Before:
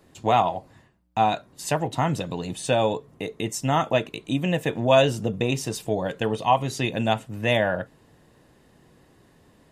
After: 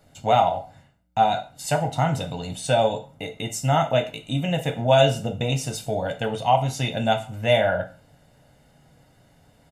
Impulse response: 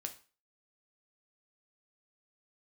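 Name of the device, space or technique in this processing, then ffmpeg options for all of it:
microphone above a desk: -filter_complex "[0:a]aecho=1:1:1.4:0.63[link_01];[1:a]atrim=start_sample=2205[link_02];[link_01][link_02]afir=irnorm=-1:irlink=0,volume=1.5dB"

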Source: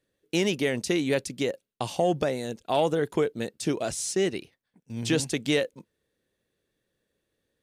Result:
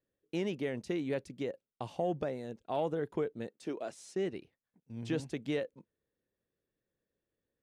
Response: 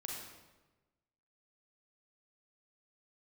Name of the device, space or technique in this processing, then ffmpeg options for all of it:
through cloth: -filter_complex "[0:a]highshelf=frequency=3300:gain=-16,asettb=1/sr,asplit=3[link_01][link_02][link_03];[link_01]atrim=end=3.474[link_04];[link_02]atrim=start=3.47:end=4.16,asetpts=PTS-STARTPTS,afade=type=in:duration=0.004:curve=qsin,afade=type=out:start_time=0.686:duration=0.004:curve=qsin,highpass=280[link_05];[link_03]atrim=start=4.156[link_06];[link_04][link_05]acrossfade=duration=0.004:curve1=hsin:curve2=qsin[link_07];[link_07][link_06]acrossfade=duration=0.004:curve1=qsin:curve2=hsin,volume=-8.5dB"

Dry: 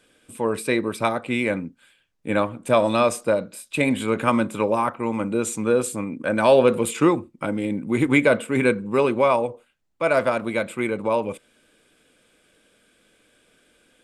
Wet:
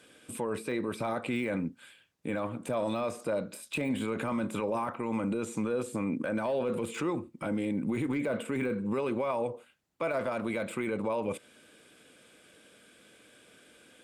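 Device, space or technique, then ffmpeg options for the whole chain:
podcast mastering chain: -af "highpass=81,deesser=0.9,acompressor=threshold=-29dB:ratio=2.5,alimiter=level_in=2dB:limit=-24dB:level=0:latency=1:release=12,volume=-2dB,volume=3dB" -ar 48000 -c:a libmp3lame -b:a 128k

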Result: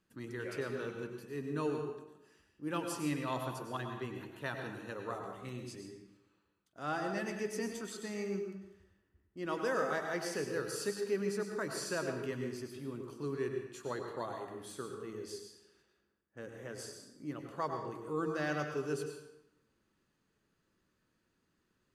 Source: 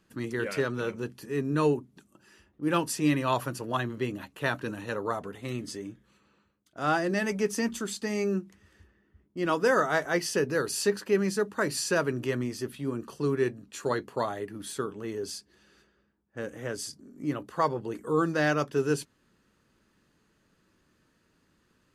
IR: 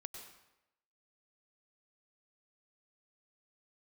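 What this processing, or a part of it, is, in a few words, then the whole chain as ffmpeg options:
bathroom: -filter_complex "[1:a]atrim=start_sample=2205[link_01];[0:a][link_01]afir=irnorm=-1:irlink=0,asettb=1/sr,asplit=3[link_02][link_03][link_04];[link_02]atrim=end=5.084[link_05];[link_03]atrim=start=5.08:end=5.49,asetpts=PTS-STARTPTS,afade=type=in:duration=0.004:curve=qsin,afade=type=out:start_time=0.406:duration=0.004:curve=qsin,asplit=2[link_06][link_07];[link_07]adelay=16,volume=-5dB[link_08];[link_06][link_08]amix=inputs=2:normalize=0,atrim=end_sample=18081[link_09];[link_04]atrim=start=5.486[link_10];[link_05][link_09]acrossfade=duration=0.004:curve1=hsin:curve2=qsin[link_11];[link_11][link_10]acrossfade=duration=0.004:curve1=qsin:curve2=hsin,volume=-5.5dB"

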